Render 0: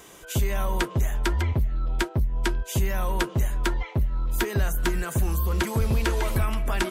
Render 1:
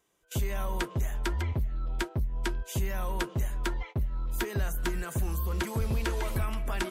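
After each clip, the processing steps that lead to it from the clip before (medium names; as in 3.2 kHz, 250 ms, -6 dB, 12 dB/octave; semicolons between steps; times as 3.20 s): gate -35 dBFS, range -20 dB; trim -6 dB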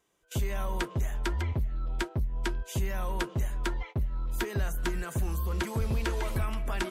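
treble shelf 12 kHz -6.5 dB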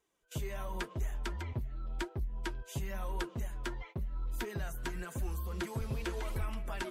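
flange 0.94 Hz, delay 2 ms, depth 6.5 ms, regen +44%; trim -2.5 dB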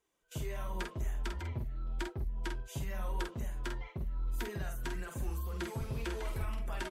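doubling 48 ms -5 dB; trim -2 dB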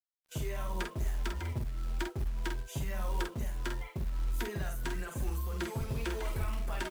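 companded quantiser 6-bit; trim +2.5 dB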